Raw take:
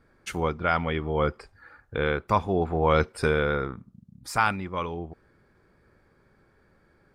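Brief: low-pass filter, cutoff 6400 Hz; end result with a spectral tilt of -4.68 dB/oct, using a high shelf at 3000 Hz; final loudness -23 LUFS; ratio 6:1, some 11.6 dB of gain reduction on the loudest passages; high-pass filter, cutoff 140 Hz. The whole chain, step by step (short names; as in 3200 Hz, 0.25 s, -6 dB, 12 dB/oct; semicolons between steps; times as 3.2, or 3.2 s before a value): HPF 140 Hz; LPF 6400 Hz; high shelf 3000 Hz +5 dB; compressor 6:1, threshold -29 dBFS; gain +12 dB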